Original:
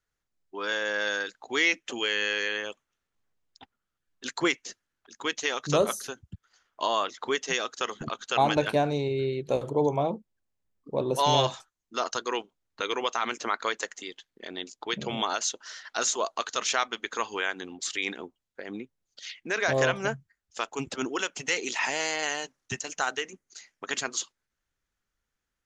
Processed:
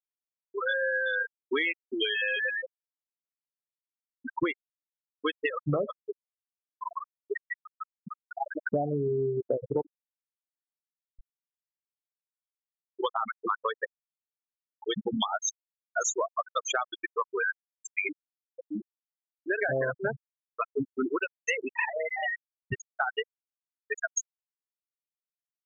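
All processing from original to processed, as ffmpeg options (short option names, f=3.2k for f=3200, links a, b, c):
-filter_complex "[0:a]asettb=1/sr,asplit=3[a][b][c];[a]atrim=end=6.274[d];[b]atrim=start=6.27:end=8.72,asetpts=PTS-STARTPTS,afade=t=in:d=0.004:c=qsin,afade=t=out:st=2.446:d=0.004:c=qsin,acompressor=threshold=-34dB:ratio=2.5:attack=3.2:release=140:knee=1:detection=peak,highshelf=f=2.8k:t=q:w=3:g=-14,tremolo=f=20:d=0.75[e];[c]atrim=start=8.716[f];[d][e]acrossfade=d=0.004:c1=hsin:c2=qsin[g];[g][f]acrossfade=d=0.004:c1=qsin:c2=hsin,asettb=1/sr,asplit=3[h][i][j];[h]atrim=end=9.814[k];[i]atrim=start=9.81:end=13,asetpts=PTS-STARTPTS,afade=t=in:d=0.004:c=qsin,afade=t=out:st=3.186:d=0.004:c=qsin,acompressor=threshold=-37dB:ratio=6:attack=3.2:release=140:knee=1:detection=peak,acrusher=samples=38:mix=1:aa=0.000001:lfo=1:lforange=60.8:lforate=2.5[l];[j]atrim=start=12.996[m];[k][l]acrossfade=d=0.004:c1=hsin:c2=qsin[n];[n][m]acrossfade=d=0.004:c1=qsin:c2=hsin,afftfilt=real='re*gte(hypot(re,im),0.141)':imag='im*gte(hypot(re,im),0.141)':win_size=1024:overlap=0.75,acompressor=threshold=-33dB:ratio=12,volume=8dB"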